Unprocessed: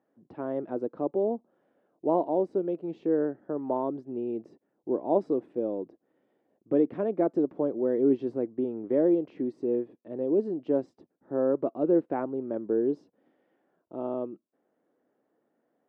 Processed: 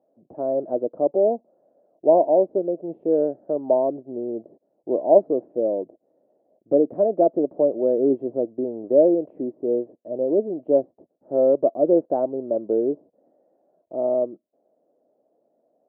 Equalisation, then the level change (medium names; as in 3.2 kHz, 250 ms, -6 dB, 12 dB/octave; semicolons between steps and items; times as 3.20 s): resonant low-pass 630 Hz, resonance Q 5.1; 0.0 dB